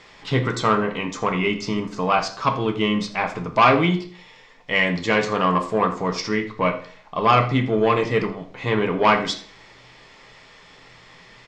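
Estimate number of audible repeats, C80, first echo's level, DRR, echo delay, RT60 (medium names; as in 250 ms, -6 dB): 1, 15.0 dB, -17.5 dB, 5.5 dB, 82 ms, 0.45 s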